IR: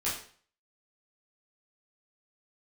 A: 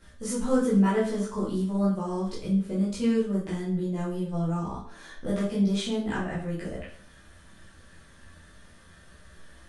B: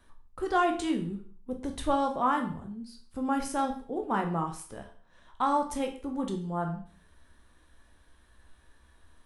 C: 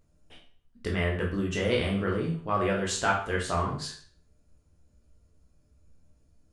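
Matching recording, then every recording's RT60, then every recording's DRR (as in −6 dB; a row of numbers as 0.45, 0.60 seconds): A; 0.45, 0.45, 0.45 seconds; −9.5, 3.0, −2.5 decibels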